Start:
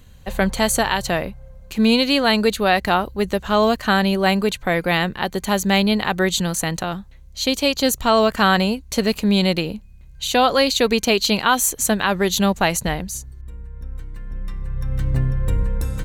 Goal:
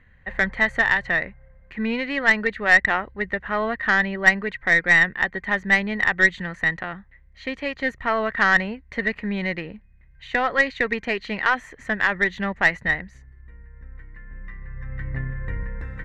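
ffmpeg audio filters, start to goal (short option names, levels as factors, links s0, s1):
-af "lowpass=f=1900:t=q:w=11,aeval=exprs='1.78*(cos(1*acos(clip(val(0)/1.78,-1,1)))-cos(1*PI/2))+0.178*(cos(3*acos(clip(val(0)/1.78,-1,1)))-cos(3*PI/2))+0.0501*(cos(6*acos(clip(val(0)/1.78,-1,1)))-cos(6*PI/2))':c=same,volume=0.473"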